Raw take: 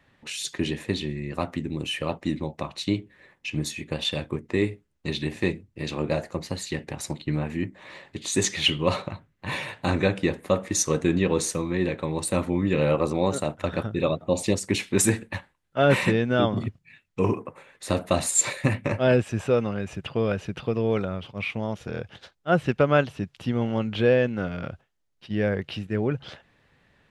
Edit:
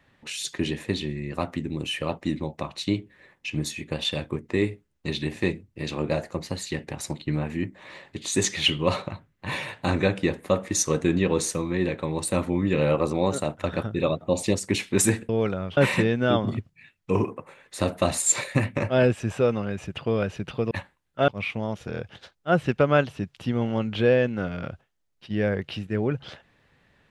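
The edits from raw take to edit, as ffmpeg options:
-filter_complex "[0:a]asplit=5[s0][s1][s2][s3][s4];[s0]atrim=end=15.292[s5];[s1]atrim=start=20.798:end=21.282[s6];[s2]atrim=start=15.858:end=20.802[s7];[s3]atrim=start=15.288:end=15.862[s8];[s4]atrim=start=21.278[s9];[s5][s6]acrossfade=d=0.004:c1=hsin:c2=hsin[s10];[s10][s7]acrossfade=d=0.004:c1=hsin:c2=hsin[s11];[s11][s8]acrossfade=d=0.004:c1=hsin:c2=hsin[s12];[s12][s9]acrossfade=d=0.004:c1=hsin:c2=hsin"

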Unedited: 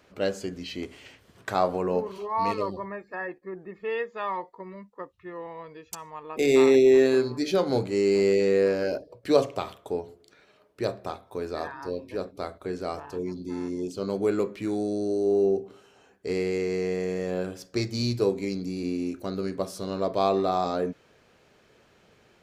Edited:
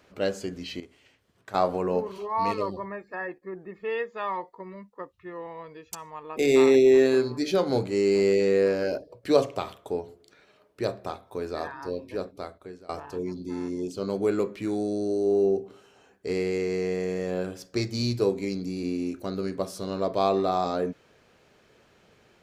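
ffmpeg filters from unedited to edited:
-filter_complex "[0:a]asplit=4[s0][s1][s2][s3];[s0]atrim=end=0.802[s4];[s1]atrim=start=0.798:end=1.542,asetpts=PTS-STARTPTS,volume=0.266[s5];[s2]atrim=start=1.538:end=12.89,asetpts=PTS-STARTPTS,afade=t=out:st=10.652:d=0.7:silence=0.0707946[s6];[s3]atrim=start=12.89,asetpts=PTS-STARTPTS,afade=t=in:d=0.004:c=hsin:silence=0.0707946[s7];[s4][s5]acrossfade=d=0.004:c1=hsin:c2=hsin[s8];[s6][s7]concat=n=2:v=0:a=1[s9];[s8][s9]acrossfade=d=0.004:c1=hsin:c2=hsin"

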